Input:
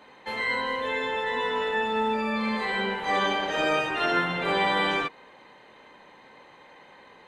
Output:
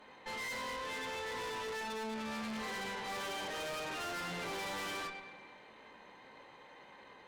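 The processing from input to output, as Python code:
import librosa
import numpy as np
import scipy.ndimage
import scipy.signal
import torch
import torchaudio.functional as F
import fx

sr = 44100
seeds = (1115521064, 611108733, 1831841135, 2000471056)

y = fx.rev_schroeder(x, sr, rt60_s=1.5, comb_ms=32, drr_db=14.5)
y = fx.chorus_voices(y, sr, voices=2, hz=0.29, base_ms=19, depth_ms=4.8, mix_pct=25)
y = fx.tube_stage(y, sr, drive_db=39.0, bias=0.6)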